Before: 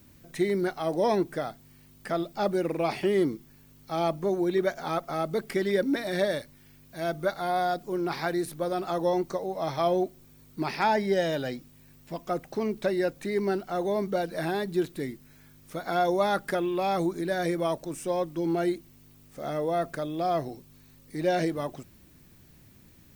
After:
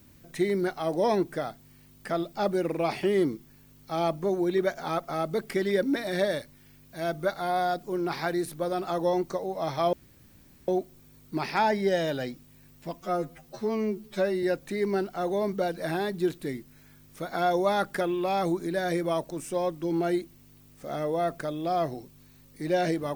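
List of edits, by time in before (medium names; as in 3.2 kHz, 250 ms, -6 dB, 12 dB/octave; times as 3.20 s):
9.93 s: insert room tone 0.75 s
12.26–12.97 s: stretch 2×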